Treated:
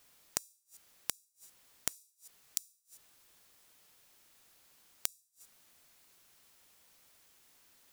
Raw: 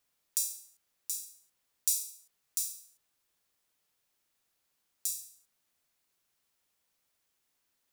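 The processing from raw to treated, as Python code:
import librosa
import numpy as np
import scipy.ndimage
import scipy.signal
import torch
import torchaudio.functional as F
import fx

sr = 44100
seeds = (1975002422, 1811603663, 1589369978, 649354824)

y = 10.0 ** (-20.0 / 20.0) * (np.abs((x / 10.0 ** (-20.0 / 20.0) + 3.0) % 4.0 - 2.0) - 1.0)
y = fx.gate_flip(y, sr, shuts_db=-39.0, range_db=-38)
y = y * 10.0 ** (13.5 / 20.0)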